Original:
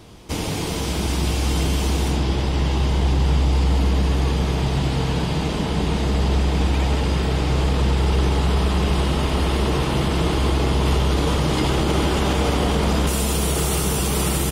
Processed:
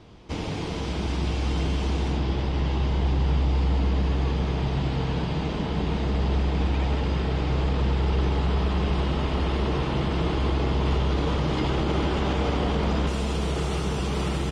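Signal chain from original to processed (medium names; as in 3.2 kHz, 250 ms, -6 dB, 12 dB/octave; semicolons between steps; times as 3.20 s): distance through air 130 m; trim -4.5 dB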